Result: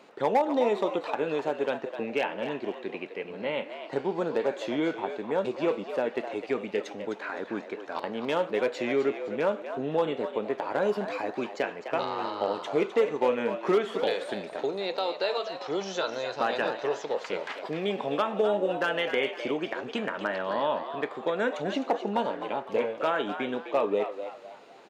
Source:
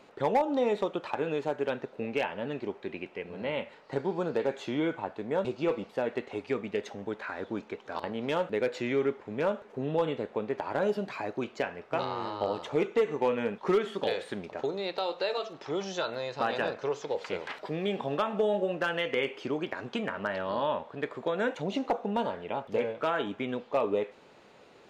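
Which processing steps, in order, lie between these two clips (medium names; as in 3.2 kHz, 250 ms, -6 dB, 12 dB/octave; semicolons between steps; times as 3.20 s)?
high-pass 190 Hz 12 dB/octave; on a send: frequency-shifting echo 256 ms, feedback 34%, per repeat +90 Hz, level -10 dB; on the sum: trim +2 dB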